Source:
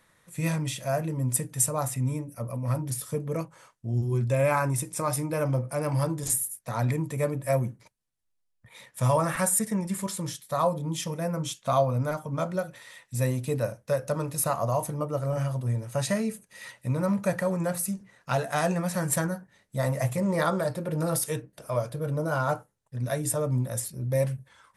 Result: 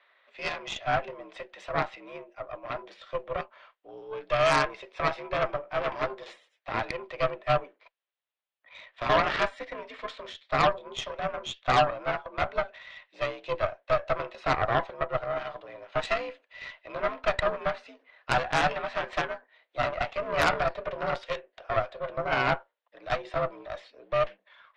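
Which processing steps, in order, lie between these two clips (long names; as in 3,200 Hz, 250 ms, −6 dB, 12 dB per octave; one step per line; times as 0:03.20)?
single-sideband voice off tune +65 Hz 400–3,500 Hz
high-shelf EQ 2,800 Hz +7.5 dB
harmonic generator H 6 −12 dB, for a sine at −11.5 dBFS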